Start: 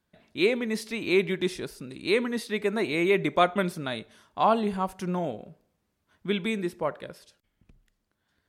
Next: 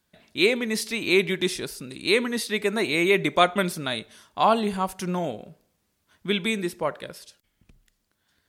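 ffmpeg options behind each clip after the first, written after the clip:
-af "highshelf=f=2600:g=9,volume=1.19"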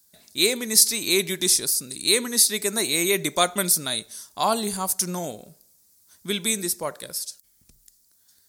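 -af "aexciter=amount=9.6:drive=3.6:freq=4300,volume=0.708"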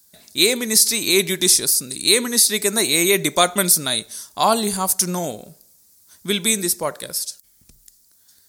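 -af "alimiter=level_in=2.11:limit=0.891:release=50:level=0:latency=1,volume=0.891"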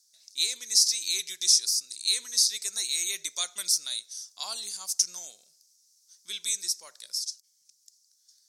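-af "bandpass=f=5600:t=q:w=3.4:csg=0"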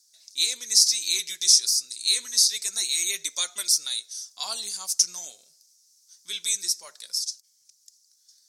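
-af "flanger=delay=2.1:depth=6.6:regen=-43:speed=0.26:shape=triangular,volume=2.37"

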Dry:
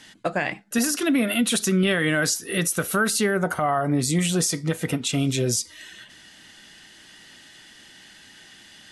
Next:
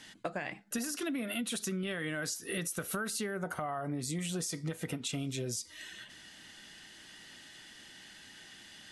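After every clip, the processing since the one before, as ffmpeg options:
-af "acompressor=threshold=0.0355:ratio=6,volume=0.596"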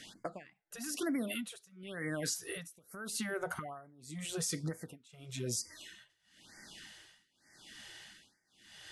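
-af "tremolo=f=0.89:d=0.96,afftfilt=real='re*(1-between(b*sr/1024,210*pow(3300/210,0.5+0.5*sin(2*PI*1.1*pts/sr))/1.41,210*pow(3300/210,0.5+0.5*sin(2*PI*1.1*pts/sr))*1.41))':imag='im*(1-between(b*sr/1024,210*pow(3300/210,0.5+0.5*sin(2*PI*1.1*pts/sr))/1.41,210*pow(3300/210,0.5+0.5*sin(2*PI*1.1*pts/sr))*1.41))':win_size=1024:overlap=0.75,volume=1.19"

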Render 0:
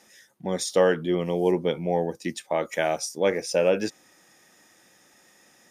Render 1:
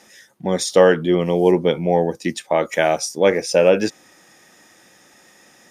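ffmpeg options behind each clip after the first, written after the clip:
-af "highshelf=f=8600:g=-4.5,volume=2.37"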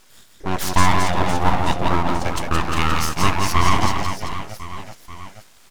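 -af "bandreject=f=60:t=h:w=6,bandreject=f=120:t=h:w=6,bandreject=f=180:t=h:w=6,bandreject=f=240:t=h:w=6,bandreject=f=300:t=h:w=6,bandreject=f=360:t=h:w=6,aecho=1:1:170|391|678.3|1052|1537:0.631|0.398|0.251|0.158|0.1,aeval=exprs='abs(val(0))':c=same"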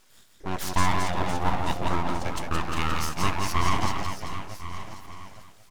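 -af "aecho=1:1:1086:0.15,volume=0.422"

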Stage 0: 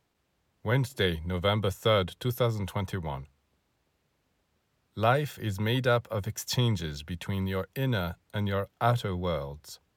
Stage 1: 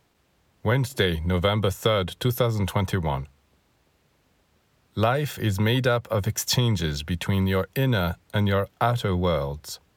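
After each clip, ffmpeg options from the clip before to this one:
-af "acompressor=threshold=0.0447:ratio=6,volume=2.82"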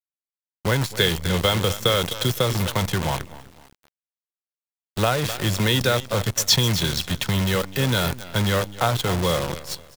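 -af "aecho=1:1:256|512|768:0.237|0.0759|0.0243,adynamicequalizer=threshold=0.00631:dfrequency=4300:dqfactor=0.73:tfrequency=4300:tqfactor=0.73:attack=5:release=100:ratio=0.375:range=4:mode=boostabove:tftype=bell,acrusher=bits=5:dc=4:mix=0:aa=0.000001"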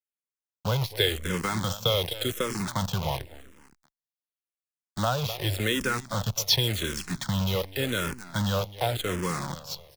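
-filter_complex "[0:a]asplit=2[s0][s1];[s1]afreqshift=-0.89[s2];[s0][s2]amix=inputs=2:normalize=1,volume=0.708"

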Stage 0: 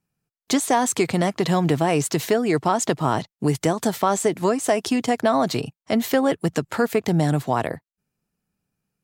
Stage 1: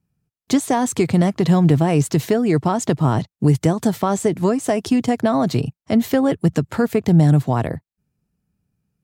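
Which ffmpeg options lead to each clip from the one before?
-af "equalizer=f=75:w=0.32:g=14.5,volume=0.75"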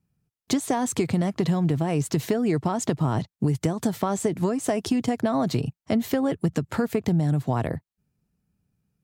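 -af "acompressor=threshold=0.126:ratio=6,volume=0.841"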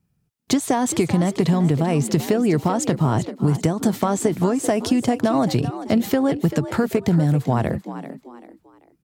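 -filter_complex "[0:a]asplit=4[s0][s1][s2][s3];[s1]adelay=389,afreqshift=61,volume=0.237[s4];[s2]adelay=778,afreqshift=122,volume=0.0785[s5];[s3]adelay=1167,afreqshift=183,volume=0.0257[s6];[s0][s4][s5][s6]amix=inputs=4:normalize=0,volume=1.68"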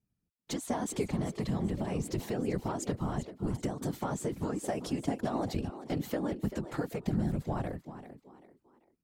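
-af "afftfilt=real='hypot(re,im)*cos(2*PI*random(0))':imag='hypot(re,im)*sin(2*PI*random(1))':win_size=512:overlap=0.75,volume=0.398"

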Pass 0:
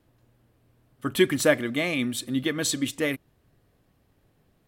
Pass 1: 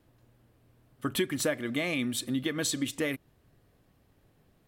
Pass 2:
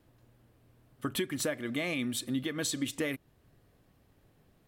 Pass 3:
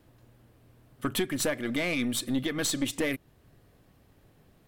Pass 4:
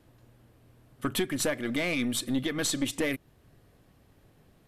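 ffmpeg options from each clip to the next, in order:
-af "acompressor=threshold=0.0447:ratio=4"
-af "alimiter=limit=0.0841:level=0:latency=1:release=434"
-af "aeval=exprs='(tanh(20*val(0)+0.45)-tanh(0.45))/20':c=same,volume=2.11"
-ar 48000 -c:a mp2 -b:a 128k

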